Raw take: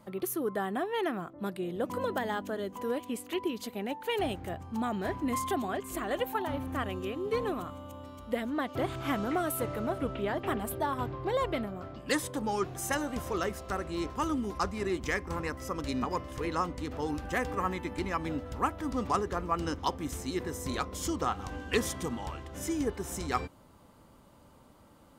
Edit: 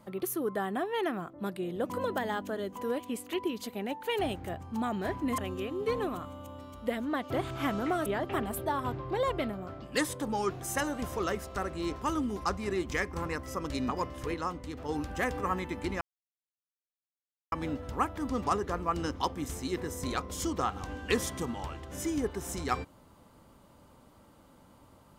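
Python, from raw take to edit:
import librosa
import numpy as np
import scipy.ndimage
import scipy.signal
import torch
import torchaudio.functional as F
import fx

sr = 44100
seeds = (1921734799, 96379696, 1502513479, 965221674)

y = fx.edit(x, sr, fx.cut(start_s=5.38, length_s=1.45),
    fx.cut(start_s=9.51, length_s=0.69),
    fx.clip_gain(start_s=16.48, length_s=0.55, db=-3.5),
    fx.insert_silence(at_s=18.15, length_s=1.51), tone=tone)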